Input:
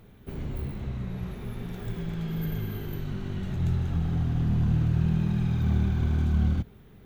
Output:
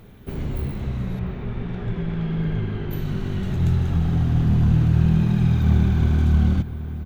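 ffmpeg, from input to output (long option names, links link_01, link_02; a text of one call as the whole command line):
ffmpeg -i in.wav -filter_complex "[0:a]asettb=1/sr,asplit=3[link_01][link_02][link_03];[link_01]atrim=end=1.194[link_04];[link_02]atrim=start=1.19:end=2.91,asetpts=PTS-STARTPTS,afade=type=in:duration=0.004:curve=qsin,afade=type=out:start_time=1.716:duration=0.004:curve=qsin,lowpass=2900[link_05];[link_03]atrim=start=2.906[link_06];[link_04][link_05]acrossfade=duration=0.004:curve1=hsin:curve2=qsin[link_07];[link_07][link_06]acrossfade=duration=0.004:curve1=qsin:curve2=hsin,asplit=2[link_08][link_09];[link_09]adelay=699.7,volume=-12dB,highshelf=frequency=4000:gain=-15.7[link_10];[link_08][link_10]amix=inputs=2:normalize=0,volume=6.5dB" out.wav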